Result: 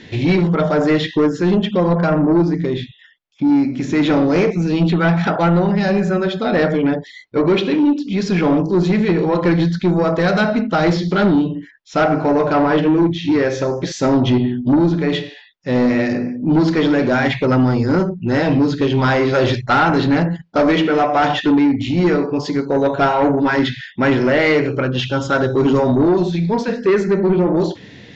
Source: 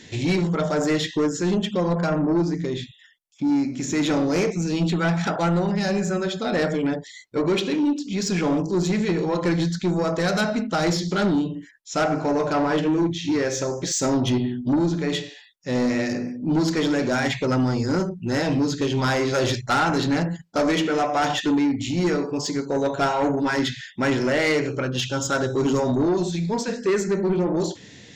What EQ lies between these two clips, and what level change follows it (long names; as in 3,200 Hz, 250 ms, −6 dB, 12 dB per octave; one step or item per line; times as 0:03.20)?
Bessel low-pass filter 3,200 Hz, order 4
+7.0 dB